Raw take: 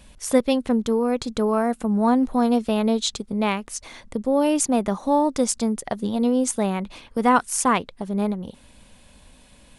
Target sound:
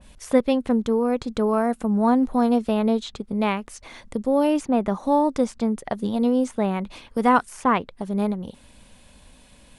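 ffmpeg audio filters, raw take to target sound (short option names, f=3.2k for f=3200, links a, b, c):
-filter_complex "[0:a]acrossover=split=3300[a][b];[b]acompressor=threshold=-41dB:ratio=6[c];[a][c]amix=inputs=2:normalize=0,adynamicequalizer=threshold=0.0141:dfrequency=2100:dqfactor=0.7:tfrequency=2100:tqfactor=0.7:attack=5:release=100:ratio=0.375:range=2.5:mode=cutabove:tftype=highshelf"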